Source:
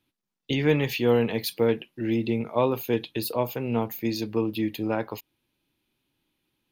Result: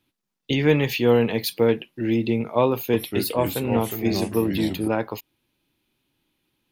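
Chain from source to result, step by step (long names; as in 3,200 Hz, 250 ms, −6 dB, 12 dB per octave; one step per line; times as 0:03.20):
0:02.73–0:04.88: delay with pitch and tempo change per echo 205 ms, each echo −3 semitones, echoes 3, each echo −6 dB
level +3.5 dB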